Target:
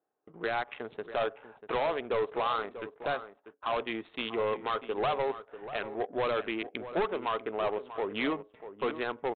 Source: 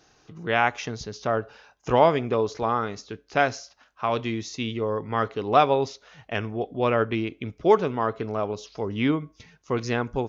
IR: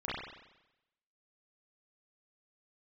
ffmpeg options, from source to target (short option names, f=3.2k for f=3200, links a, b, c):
-filter_complex "[0:a]highpass=500,agate=range=-18dB:threshold=-56dB:ratio=16:detection=peak,asplit=2[a][b];[b]acompressor=threshold=-37dB:ratio=8,volume=-1.5dB[c];[a][c]amix=inputs=2:normalize=0,alimiter=limit=-14dB:level=0:latency=1:release=336,adynamicsmooth=sensitivity=4:basefreq=660,atempo=1.1,aresample=8000,asoftclip=type=hard:threshold=-25dB,aresample=44100,asplit=2[d][e];[e]adelay=641.4,volume=-12dB,highshelf=f=4k:g=-14.4[f];[d][f]amix=inputs=2:normalize=0"